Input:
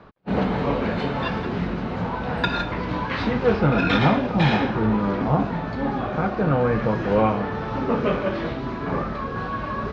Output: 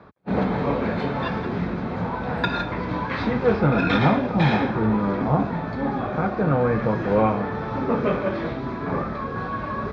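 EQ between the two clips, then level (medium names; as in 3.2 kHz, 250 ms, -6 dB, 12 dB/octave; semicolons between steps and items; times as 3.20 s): high-pass 58 Hz; treble shelf 4.9 kHz -6.5 dB; band-stop 2.9 kHz, Q 8; 0.0 dB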